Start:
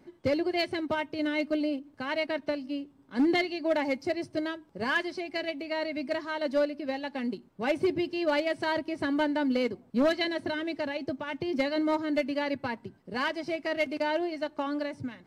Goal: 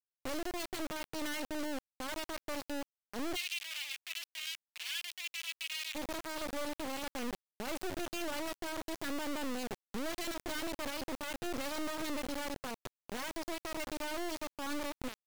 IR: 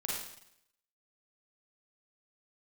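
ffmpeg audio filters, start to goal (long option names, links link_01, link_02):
-filter_complex "[0:a]alimiter=level_in=3.5dB:limit=-24dB:level=0:latency=1:release=26,volume=-3.5dB,acrusher=bits=3:dc=4:mix=0:aa=0.000001,asplit=3[link_01][link_02][link_03];[link_01]afade=type=out:start_time=3.35:duration=0.02[link_04];[link_02]highpass=frequency=2700:width_type=q:width=2.7,afade=type=in:start_time=3.35:duration=0.02,afade=type=out:start_time=5.94:duration=0.02[link_05];[link_03]afade=type=in:start_time=5.94:duration=0.02[link_06];[link_04][link_05][link_06]amix=inputs=3:normalize=0,volume=-2dB"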